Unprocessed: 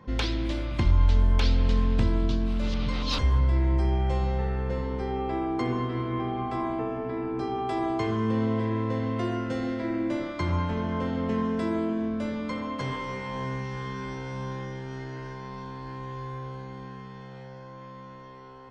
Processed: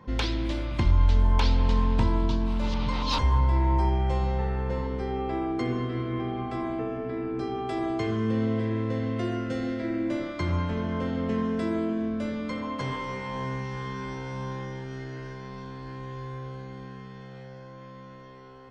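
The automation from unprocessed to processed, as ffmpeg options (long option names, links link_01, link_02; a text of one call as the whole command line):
ffmpeg -i in.wav -af "asetnsamples=nb_out_samples=441:pad=0,asendcmd='1.25 equalizer g 14.5;3.89 equalizer g 5.5;4.87 equalizer g -4.5;5.52 equalizer g -14.5;10.08 equalizer g -7;12.63 equalizer g 1.5;14.84 equalizer g -9.5',equalizer=frequency=930:width_type=o:width=0.26:gain=3" out.wav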